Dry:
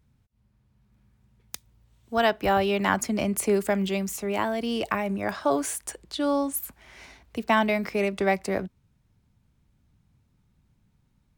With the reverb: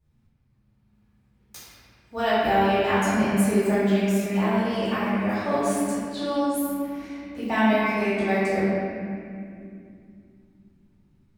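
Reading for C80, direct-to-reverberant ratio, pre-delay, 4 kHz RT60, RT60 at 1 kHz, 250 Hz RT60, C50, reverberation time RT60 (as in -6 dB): -2.5 dB, -16.0 dB, 3 ms, 1.6 s, 2.1 s, 4.3 s, -4.5 dB, 2.6 s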